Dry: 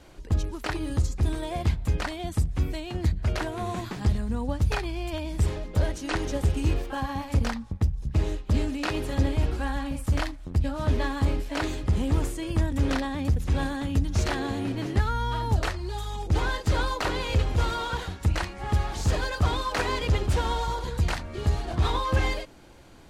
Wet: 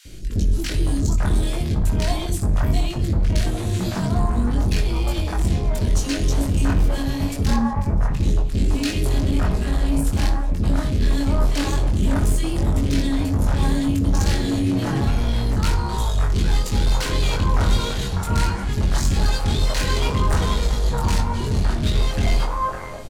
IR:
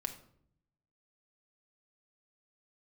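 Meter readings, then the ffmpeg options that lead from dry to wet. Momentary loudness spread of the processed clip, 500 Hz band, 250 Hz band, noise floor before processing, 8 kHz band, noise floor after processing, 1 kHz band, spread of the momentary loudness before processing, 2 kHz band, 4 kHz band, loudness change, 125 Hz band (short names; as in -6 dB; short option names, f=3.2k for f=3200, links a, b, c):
3 LU, +3.5 dB, +7.5 dB, -42 dBFS, +9.5 dB, -26 dBFS, +3.0 dB, 5 LU, +2.0 dB, +6.0 dB, +6.0 dB, +5.5 dB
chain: -filter_complex "[0:a]bass=f=250:g=7,treble=f=4k:g=6,acontrast=83,asoftclip=type=tanh:threshold=-18.5dB,acrossover=split=500|1700[a][b][c];[a]adelay=50[d];[b]adelay=560[e];[d][e][c]amix=inputs=3:normalize=0,asplit=2[f][g];[1:a]atrim=start_sample=2205,adelay=21[h];[g][h]afir=irnorm=-1:irlink=0,volume=-2dB[i];[f][i]amix=inputs=2:normalize=0"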